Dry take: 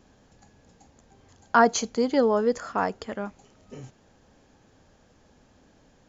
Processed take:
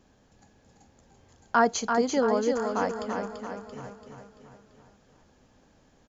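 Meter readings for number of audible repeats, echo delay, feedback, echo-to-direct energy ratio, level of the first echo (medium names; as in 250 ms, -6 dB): 6, 338 ms, 52%, -4.0 dB, -5.5 dB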